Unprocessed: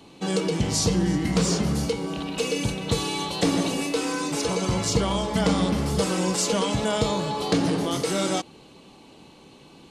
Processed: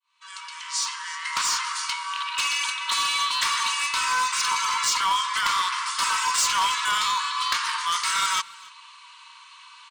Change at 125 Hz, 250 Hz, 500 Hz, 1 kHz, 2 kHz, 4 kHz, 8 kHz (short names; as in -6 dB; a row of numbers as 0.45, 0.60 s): under -30 dB, under -30 dB, -27.5 dB, +7.0 dB, +8.0 dB, +5.5 dB, +3.5 dB